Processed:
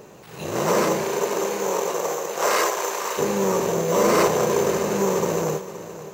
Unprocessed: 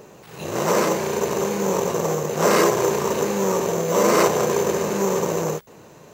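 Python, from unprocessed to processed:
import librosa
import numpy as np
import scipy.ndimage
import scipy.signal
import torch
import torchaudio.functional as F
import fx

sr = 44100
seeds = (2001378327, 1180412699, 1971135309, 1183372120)

y = fx.highpass(x, sr, hz=fx.line((1.03, 260.0), (3.17, 870.0)), slope=12, at=(1.03, 3.17), fade=0.02)
y = 10.0 ** (-7.5 / 20.0) * np.tanh(y / 10.0 ** (-7.5 / 20.0))
y = fx.echo_feedback(y, sr, ms=522, feedback_pct=38, wet_db=-14.0)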